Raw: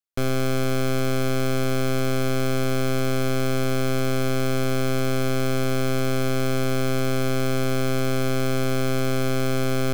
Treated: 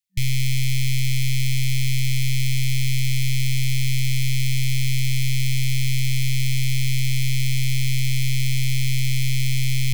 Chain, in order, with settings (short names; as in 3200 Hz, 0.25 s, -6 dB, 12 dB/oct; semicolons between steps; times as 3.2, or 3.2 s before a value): FFT band-reject 190–1800 Hz; gain +5.5 dB